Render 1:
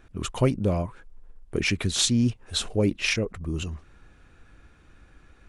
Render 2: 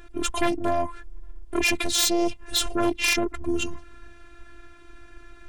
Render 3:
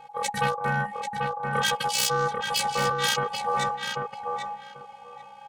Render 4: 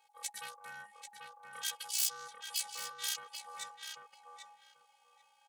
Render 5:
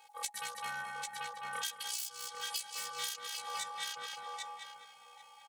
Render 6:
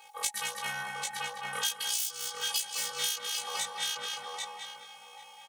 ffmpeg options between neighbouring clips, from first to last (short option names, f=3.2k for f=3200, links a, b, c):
-af "aeval=exprs='0.355*sin(PI/2*3.98*val(0)/0.355)':c=same,afftfilt=real='hypot(re,im)*cos(PI*b)':imag='0':win_size=512:overlap=0.75,volume=-5.5dB"
-filter_complex "[0:a]aeval=exprs='val(0)*sin(2*PI*830*n/s)':c=same,asplit=2[a][b];[b]adelay=790,lowpass=f=2.8k:p=1,volume=-3.5dB,asplit=2[c][d];[d]adelay=790,lowpass=f=2.8k:p=1,volume=0.19,asplit=2[e][f];[f]adelay=790,lowpass=f=2.8k:p=1,volume=0.19[g];[c][e][g]amix=inputs=3:normalize=0[h];[a][h]amix=inputs=2:normalize=0"
-af "aderivative,volume=-6dB"
-filter_complex "[0:a]asplit=2[a][b];[b]adelay=207,lowpass=f=4.9k:p=1,volume=-6dB,asplit=2[c][d];[d]adelay=207,lowpass=f=4.9k:p=1,volume=0.32,asplit=2[e][f];[f]adelay=207,lowpass=f=4.9k:p=1,volume=0.32,asplit=2[g][h];[h]adelay=207,lowpass=f=4.9k:p=1,volume=0.32[i];[c][e][g][i]amix=inputs=4:normalize=0[j];[a][j]amix=inputs=2:normalize=0,acompressor=threshold=-44dB:ratio=10,volume=9.5dB"
-filter_complex "[0:a]asplit=2[a][b];[b]adelay=20,volume=-3dB[c];[a][c]amix=inputs=2:normalize=0,volume=6dB"